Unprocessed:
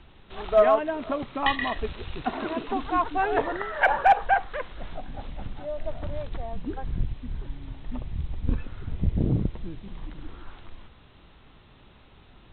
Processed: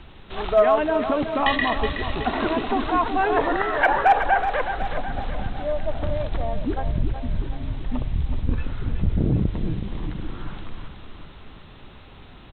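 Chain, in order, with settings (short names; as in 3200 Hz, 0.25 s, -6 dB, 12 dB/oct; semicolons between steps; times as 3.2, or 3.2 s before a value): in parallel at -2.5 dB: negative-ratio compressor -29 dBFS; on the sum: feedback echo 0.372 s, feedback 52%, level -9 dB; gain +1 dB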